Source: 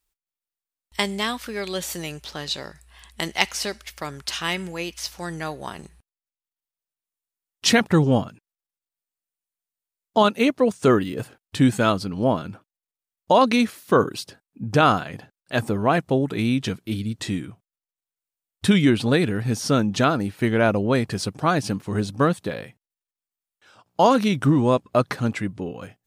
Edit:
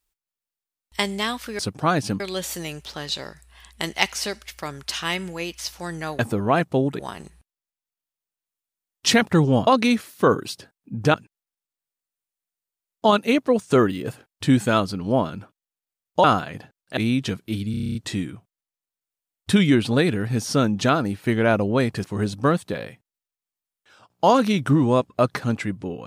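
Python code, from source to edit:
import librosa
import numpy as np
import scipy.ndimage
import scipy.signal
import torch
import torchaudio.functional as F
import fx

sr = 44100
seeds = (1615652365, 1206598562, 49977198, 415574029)

y = fx.edit(x, sr, fx.move(start_s=13.36, length_s=1.47, to_s=8.26),
    fx.move(start_s=15.56, length_s=0.8, to_s=5.58),
    fx.stutter(start_s=17.1, slice_s=0.03, count=9),
    fx.move(start_s=21.19, length_s=0.61, to_s=1.59), tone=tone)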